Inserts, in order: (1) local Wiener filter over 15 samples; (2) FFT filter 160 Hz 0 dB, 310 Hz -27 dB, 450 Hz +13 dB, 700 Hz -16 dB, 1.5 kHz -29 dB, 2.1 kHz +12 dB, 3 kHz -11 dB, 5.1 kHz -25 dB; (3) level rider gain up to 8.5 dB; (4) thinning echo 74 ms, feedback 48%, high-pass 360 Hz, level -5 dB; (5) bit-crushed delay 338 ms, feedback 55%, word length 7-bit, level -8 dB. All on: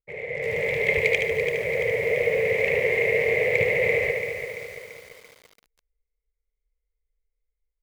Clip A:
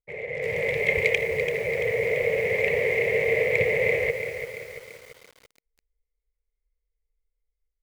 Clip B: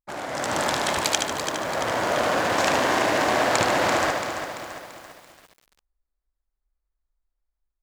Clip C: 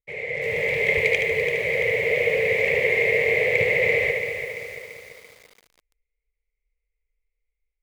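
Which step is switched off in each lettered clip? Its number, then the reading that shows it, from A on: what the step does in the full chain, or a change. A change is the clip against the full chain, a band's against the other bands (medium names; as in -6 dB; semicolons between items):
4, loudness change -1.0 LU; 2, 1 kHz band +19.0 dB; 1, 4 kHz band +3.5 dB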